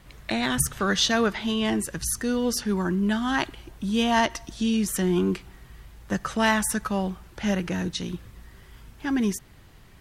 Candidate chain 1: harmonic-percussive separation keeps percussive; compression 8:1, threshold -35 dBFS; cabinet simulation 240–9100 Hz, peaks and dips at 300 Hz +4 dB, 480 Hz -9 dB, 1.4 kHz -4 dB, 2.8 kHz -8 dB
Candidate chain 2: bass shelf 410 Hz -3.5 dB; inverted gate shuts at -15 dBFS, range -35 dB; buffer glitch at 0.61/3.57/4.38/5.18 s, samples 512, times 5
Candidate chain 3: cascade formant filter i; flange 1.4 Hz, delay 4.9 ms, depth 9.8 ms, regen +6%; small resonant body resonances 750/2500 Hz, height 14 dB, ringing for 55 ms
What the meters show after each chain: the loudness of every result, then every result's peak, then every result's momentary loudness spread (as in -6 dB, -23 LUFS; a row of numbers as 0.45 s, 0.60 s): -42.0 LUFS, -29.5 LUFS, -36.0 LUFS; -22.5 dBFS, -14.5 dBFS, -20.5 dBFS; 14 LU, 12 LU, 13 LU